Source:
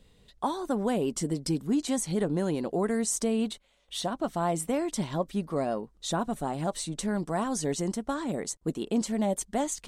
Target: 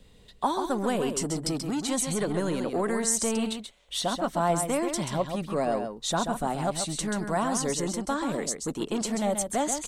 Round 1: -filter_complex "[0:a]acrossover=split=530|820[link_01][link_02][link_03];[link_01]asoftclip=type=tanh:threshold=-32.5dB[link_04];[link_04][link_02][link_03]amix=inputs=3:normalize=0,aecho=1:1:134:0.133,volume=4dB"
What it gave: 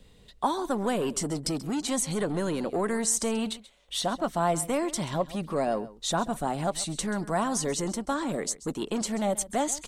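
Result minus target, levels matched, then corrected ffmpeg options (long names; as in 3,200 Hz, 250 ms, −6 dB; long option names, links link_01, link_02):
echo-to-direct −10.5 dB
-filter_complex "[0:a]acrossover=split=530|820[link_01][link_02][link_03];[link_01]asoftclip=type=tanh:threshold=-32.5dB[link_04];[link_04][link_02][link_03]amix=inputs=3:normalize=0,aecho=1:1:134:0.447,volume=4dB"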